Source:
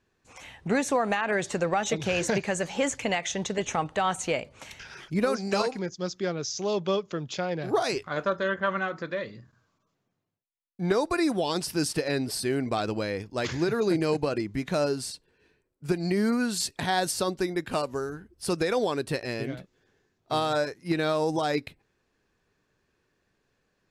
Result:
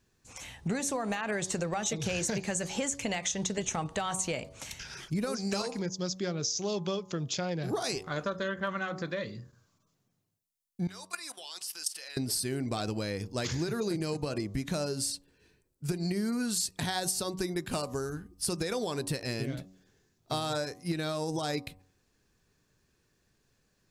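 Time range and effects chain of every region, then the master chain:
10.87–12.17 s: high-pass 1.2 kHz + peaking EQ 3 kHz +5.5 dB 0.22 oct + level held to a coarse grid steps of 15 dB
whole clip: tone controls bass +7 dB, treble +11 dB; de-hum 93.77 Hz, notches 13; compression, threshold -26 dBFS; trim -2.5 dB

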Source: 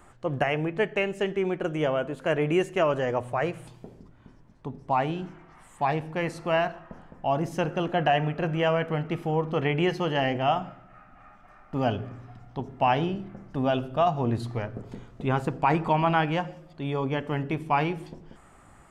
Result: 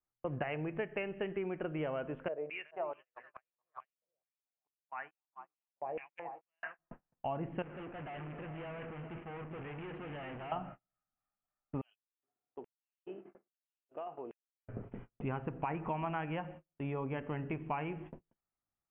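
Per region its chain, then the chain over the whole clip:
2.28–6.79 s: backward echo that repeats 216 ms, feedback 52%, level -7 dB + step-sequenced band-pass 4.6 Hz 540–7200 Hz
7.62–10.52 s: companding laws mixed up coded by mu + valve stage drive 38 dB, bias 0.55 + delay 399 ms -10 dB
11.81–14.68 s: compression 12:1, threshold -36 dBFS + LFO high-pass square 1.2 Hz 390–4500 Hz
whole clip: steep low-pass 2.9 kHz 72 dB/octave; gate -41 dBFS, range -38 dB; compression, threshold -28 dBFS; trim -5.5 dB

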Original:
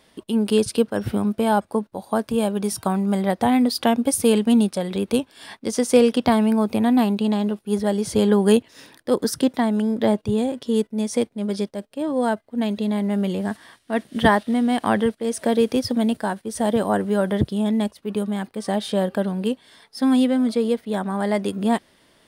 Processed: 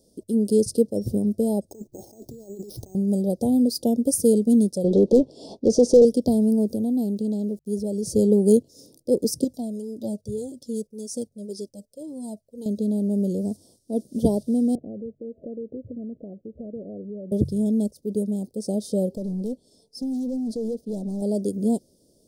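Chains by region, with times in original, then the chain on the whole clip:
1.70–2.95 s: FFT filter 140 Hz 0 dB, 190 Hz -12 dB, 350 Hz +3 dB, 510 Hz -9 dB, 790 Hz +2 dB, 2.2 kHz -17 dB, 6.4 kHz -13 dB, 11 kHz +1 dB + compressor with a negative ratio -38 dBFS + careless resampling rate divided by 6×, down none, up hold
4.84–6.05 s: tape spacing loss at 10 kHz 21 dB + overdrive pedal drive 27 dB, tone 2.6 kHz, clips at -5.5 dBFS
6.71–8.03 s: compression 1.5:1, threshold -27 dBFS + small samples zeroed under -52 dBFS
9.44–12.66 s: tilt shelf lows -3.5 dB, about 1.1 kHz + Shepard-style flanger falling 1.8 Hz
14.75–17.32 s: steep low-pass 700 Hz 48 dB/octave + compression 3:1, threshold -35 dBFS
19.11–21.22 s: treble shelf 9 kHz -8.5 dB + compression, threshold -19 dBFS + hard clipper -24 dBFS
whole clip: elliptic band-stop 530–5300 Hz, stop band 80 dB; de-hum 47.56 Hz, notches 3

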